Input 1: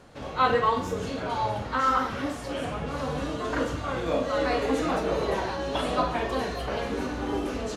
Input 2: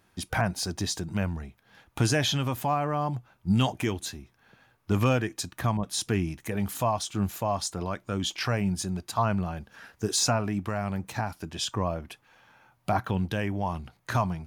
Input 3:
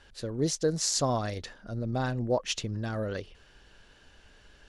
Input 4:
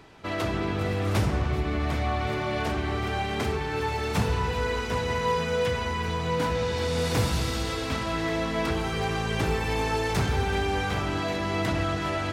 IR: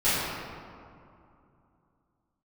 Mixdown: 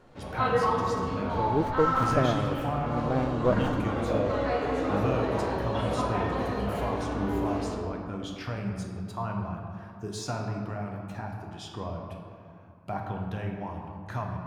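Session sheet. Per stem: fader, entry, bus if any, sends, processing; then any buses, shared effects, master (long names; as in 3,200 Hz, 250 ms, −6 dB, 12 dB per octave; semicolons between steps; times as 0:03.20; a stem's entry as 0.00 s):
−6.0 dB, 0.00 s, send −14 dB, no processing
−9.5 dB, 0.00 s, send −15 dB, no processing
−3.0 dB, 1.15 s, no send, parametric band 510 Hz +7.5 dB 1.8 octaves; windowed peak hold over 17 samples
muted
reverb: on, RT60 2.6 s, pre-delay 3 ms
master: high-shelf EQ 3,300 Hz −9.5 dB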